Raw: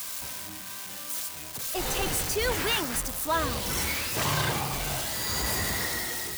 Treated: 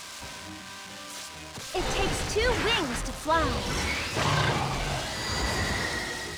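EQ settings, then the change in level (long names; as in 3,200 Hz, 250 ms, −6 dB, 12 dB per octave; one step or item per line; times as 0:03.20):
high-frequency loss of the air 87 metres
+3.0 dB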